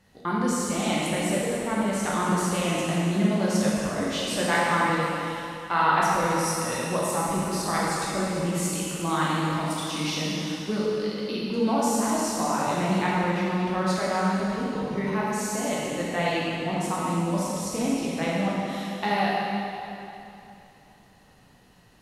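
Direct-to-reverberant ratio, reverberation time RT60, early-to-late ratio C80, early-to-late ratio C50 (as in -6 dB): -6.5 dB, 2.9 s, -2.0 dB, -3.5 dB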